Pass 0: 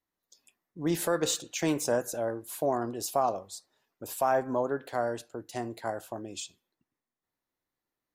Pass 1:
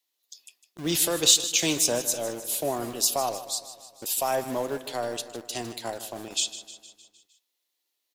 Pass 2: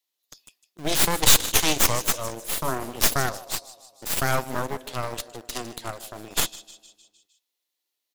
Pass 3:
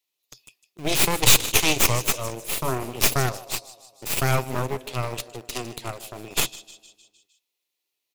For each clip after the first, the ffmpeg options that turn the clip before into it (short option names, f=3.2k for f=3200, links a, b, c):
-filter_complex "[0:a]highshelf=f=2.2k:t=q:w=1.5:g=11.5,acrossover=split=300|1900[a][b][c];[a]acrusher=bits=6:mix=0:aa=0.000001[d];[d][b][c]amix=inputs=3:normalize=0,aecho=1:1:154|308|462|616|770|924:0.2|0.116|0.0671|0.0389|0.0226|0.0131"
-af "aeval=exprs='0.631*(cos(1*acos(clip(val(0)/0.631,-1,1)))-cos(1*PI/2))+0.282*(cos(8*acos(clip(val(0)/0.631,-1,1)))-cos(8*PI/2))':c=same,volume=-2.5dB"
-af "equalizer=f=125:t=o:w=0.33:g=8,equalizer=f=400:t=o:w=0.33:g=5,equalizer=f=1.6k:t=o:w=0.33:g=-4,equalizer=f=2.5k:t=o:w=0.33:g=7"